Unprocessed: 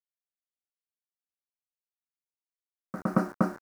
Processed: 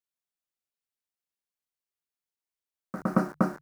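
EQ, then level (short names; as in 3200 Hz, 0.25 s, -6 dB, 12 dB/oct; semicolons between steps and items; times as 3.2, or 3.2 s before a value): notches 50/100/150 Hz; +1.0 dB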